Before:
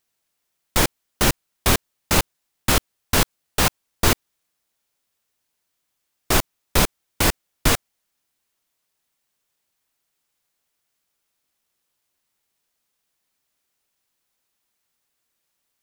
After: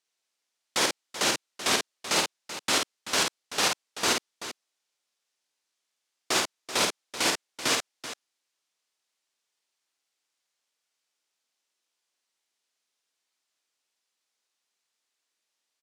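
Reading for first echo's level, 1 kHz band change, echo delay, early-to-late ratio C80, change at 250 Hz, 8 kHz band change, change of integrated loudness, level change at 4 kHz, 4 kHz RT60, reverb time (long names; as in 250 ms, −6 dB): −3.5 dB, −5.0 dB, 50 ms, no reverb audible, −10.0 dB, −4.0 dB, −5.0 dB, −1.5 dB, no reverb audible, no reverb audible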